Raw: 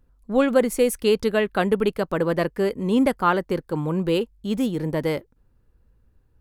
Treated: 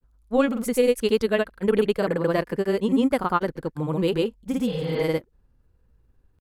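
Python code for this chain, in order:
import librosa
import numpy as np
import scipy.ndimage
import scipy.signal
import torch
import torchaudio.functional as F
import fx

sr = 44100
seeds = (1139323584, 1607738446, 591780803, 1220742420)

y = fx.granulator(x, sr, seeds[0], grain_ms=100.0, per_s=20.0, spray_ms=100.0, spread_st=0)
y = fx.spec_repair(y, sr, seeds[1], start_s=4.7, length_s=0.31, low_hz=280.0, high_hz=5000.0, source='both')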